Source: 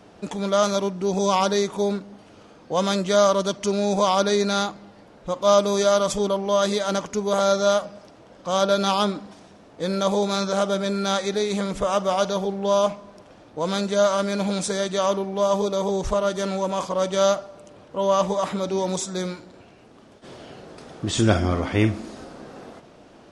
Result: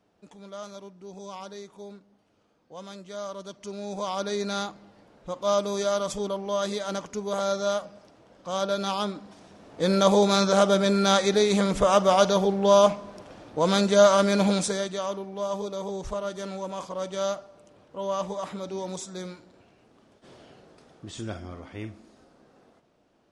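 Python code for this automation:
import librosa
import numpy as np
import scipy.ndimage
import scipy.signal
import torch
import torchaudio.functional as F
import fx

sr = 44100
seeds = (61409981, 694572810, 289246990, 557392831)

y = fx.gain(x, sr, db=fx.line((3.09, -19.5), (4.52, -7.0), (9.14, -7.0), (9.87, 2.5), (14.48, 2.5), (15.05, -9.0), (20.39, -9.0), (21.4, -17.5)))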